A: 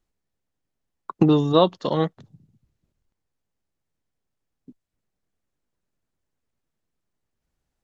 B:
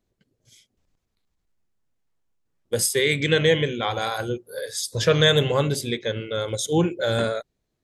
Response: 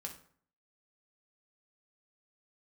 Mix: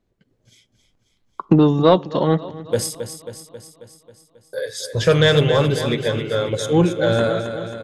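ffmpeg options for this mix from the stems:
-filter_complex "[0:a]adelay=300,volume=-1.5dB,asplit=3[link_01][link_02][link_03];[link_02]volume=-13dB[link_04];[link_03]volume=-17.5dB[link_05];[1:a]acontrast=54,volume=-7dB,asplit=3[link_06][link_07][link_08];[link_06]atrim=end=2.95,asetpts=PTS-STARTPTS,afade=type=out:start_time=2.946:duration=0.004:curve=hsin[link_09];[link_07]atrim=start=2.95:end=4.53,asetpts=PTS-STARTPTS,volume=0[link_10];[link_08]atrim=start=4.53,asetpts=PTS-STARTPTS,afade=type=in:duration=0.004:curve=hsin[link_11];[link_09][link_10][link_11]concat=n=3:v=0:a=1,asplit=3[link_12][link_13][link_14];[link_13]volume=-14dB[link_15];[link_14]volume=-8.5dB[link_16];[2:a]atrim=start_sample=2205[link_17];[link_04][link_15]amix=inputs=2:normalize=0[link_18];[link_18][link_17]afir=irnorm=-1:irlink=0[link_19];[link_05][link_16]amix=inputs=2:normalize=0,aecho=0:1:270|540|810|1080|1350|1620|1890|2160|2430|2700:1|0.6|0.36|0.216|0.13|0.0778|0.0467|0.028|0.0168|0.0101[link_20];[link_01][link_12][link_19][link_20]amix=inputs=4:normalize=0,highshelf=frequency=4600:gain=-11.5,acontrast=32"

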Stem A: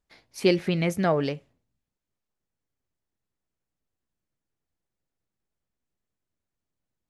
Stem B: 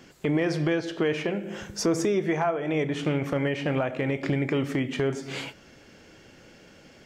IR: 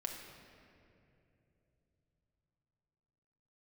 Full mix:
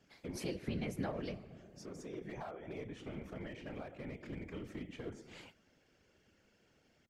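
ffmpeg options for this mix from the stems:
-filter_complex "[0:a]acompressor=threshold=-30dB:ratio=6,volume=-4dB,asplit=3[link_01][link_02][link_03];[link_02]volume=-7dB[link_04];[1:a]bandreject=frequency=60:width_type=h:width=6,bandreject=frequency=120:width_type=h:width=6,bandreject=frequency=180:width_type=h:width=6,bandreject=frequency=240:width_type=h:width=6,bandreject=frequency=300:width_type=h:width=6,bandreject=frequency=360:width_type=h:width=6,bandreject=frequency=420:width_type=h:width=6,asoftclip=type=hard:threshold=-19.5dB,volume=-13.5dB[link_05];[link_03]apad=whole_len=311178[link_06];[link_05][link_06]sidechaincompress=threshold=-46dB:ratio=8:attack=5.1:release=976[link_07];[2:a]atrim=start_sample=2205[link_08];[link_04][link_08]afir=irnorm=-1:irlink=0[link_09];[link_01][link_07][link_09]amix=inputs=3:normalize=0,highpass=59,lowshelf=frequency=110:gain=6,afftfilt=real='hypot(re,im)*cos(2*PI*random(0))':imag='hypot(re,im)*sin(2*PI*random(1))':win_size=512:overlap=0.75"

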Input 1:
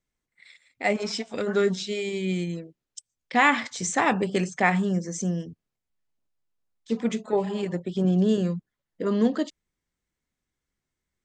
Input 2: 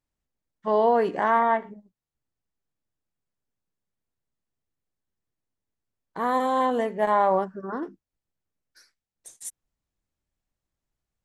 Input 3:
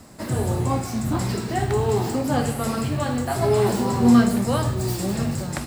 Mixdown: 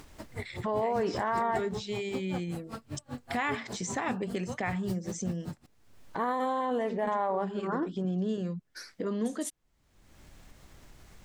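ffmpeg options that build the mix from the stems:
ffmpeg -i stem1.wav -i stem2.wav -i stem3.wav -filter_complex "[0:a]volume=-10dB[link_01];[1:a]volume=0dB[link_02];[2:a]acrusher=bits=6:mix=0:aa=0.000001,acompressor=threshold=-23dB:ratio=6,aeval=exprs='val(0)*pow(10,-36*(0.5-0.5*cos(2*PI*5.1*n/s))/20)':channel_layout=same,volume=-8dB[link_03];[link_01][link_02]amix=inputs=2:normalize=0,acompressor=mode=upward:threshold=-27dB:ratio=2.5,alimiter=limit=-21.5dB:level=0:latency=1:release=51,volume=0dB[link_04];[link_03][link_04]amix=inputs=2:normalize=0,highshelf=frequency=7800:gain=-7.5" out.wav

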